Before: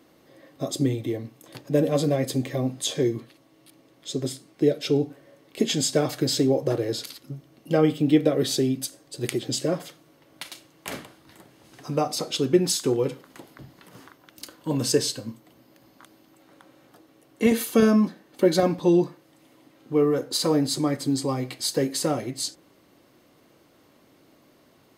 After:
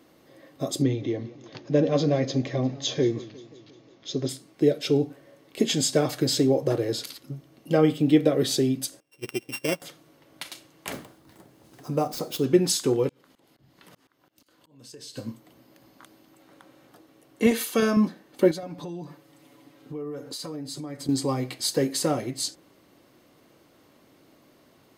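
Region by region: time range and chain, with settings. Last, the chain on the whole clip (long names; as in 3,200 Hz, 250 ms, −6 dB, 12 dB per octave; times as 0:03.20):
0:00.82–0:04.29: Butterworth low-pass 6,600 Hz 96 dB per octave + feedback echo with a swinging delay time 176 ms, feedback 60%, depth 145 cents, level −19 dB
0:09.00–0:09.82: samples sorted by size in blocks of 16 samples + low-shelf EQ 99 Hz −11 dB + expander for the loud parts 2.5 to 1, over −35 dBFS
0:10.92–0:12.44: gap after every zero crossing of 0.051 ms + parametric band 2,600 Hz −6 dB 2.5 octaves
0:13.09–0:15.17: parametric band 3,500 Hz +3 dB 1.7 octaves + downward compressor 12 to 1, threshold −38 dBFS + volume swells 405 ms
0:17.51–0:17.97: low-pass filter 2,900 Hz 6 dB per octave + spectral tilt +3 dB per octave
0:18.51–0:21.09: comb filter 7 ms, depth 52% + downward compressor 5 to 1, threshold −34 dBFS
whole clip: no processing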